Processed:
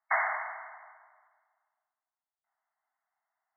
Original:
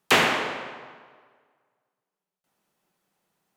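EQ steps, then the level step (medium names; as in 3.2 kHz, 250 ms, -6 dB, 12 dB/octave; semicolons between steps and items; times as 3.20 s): brick-wall FIR band-pass 620–2200 Hz; -6.0 dB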